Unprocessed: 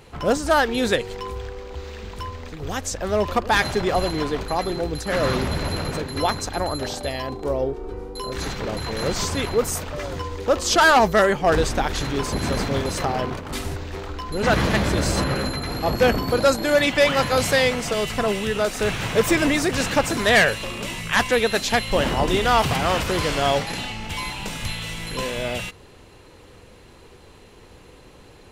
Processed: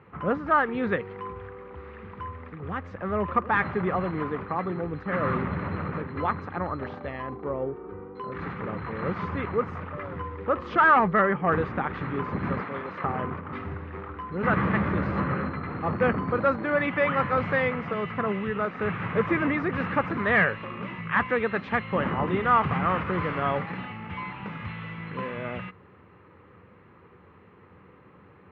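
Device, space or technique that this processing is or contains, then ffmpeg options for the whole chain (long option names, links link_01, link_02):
bass cabinet: -filter_complex "[0:a]asettb=1/sr,asplit=3[link_01][link_02][link_03];[link_01]atrim=end=12.604[link_04];[link_02]atrim=start=12.6:end=13.04,asetpts=PTS-STARTPTS,afade=type=in:duration=0.004:curve=qsin,afade=type=out:start_time=0.436:duration=0.004:curve=qsin,highpass=frequency=550:poles=1[link_05];[link_03]atrim=start=13.036[link_06];[link_04][link_05]acrossfade=duration=0.004:curve1=hsin:curve2=qsin[link_07];[link_07][link_06]acrossfade=duration=0.004:curve1=qsin:curve2=hsin,highpass=frequency=82:width=0.5412,highpass=frequency=82:width=1.3066,equalizer=frequency=87:width_type=q:width=4:gain=4,equalizer=frequency=180:width_type=q:width=4:gain=8,equalizer=frequency=670:width_type=q:width=4:gain=-5,equalizer=frequency=1200:width_type=q:width=4:gain=9,equalizer=frequency=2000:width_type=q:width=4:gain=3,lowpass=frequency=2200:width=0.5412,lowpass=frequency=2200:width=1.3066,volume=-6dB"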